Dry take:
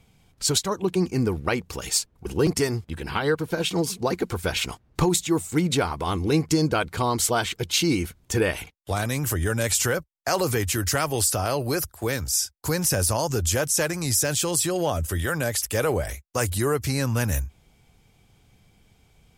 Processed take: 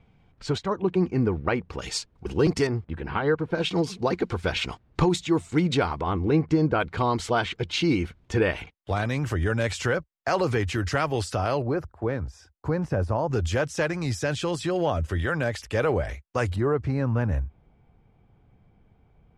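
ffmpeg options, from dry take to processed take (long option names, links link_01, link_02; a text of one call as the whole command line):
ffmpeg -i in.wav -af "asetnsamples=nb_out_samples=441:pad=0,asendcmd='1.79 lowpass f 4500;2.67 lowpass f 1900;3.55 lowpass f 4000;6.01 lowpass f 1900;6.8 lowpass f 3200;11.62 lowpass f 1200;13.33 lowpass f 3000;16.56 lowpass f 1300',lowpass=2200" out.wav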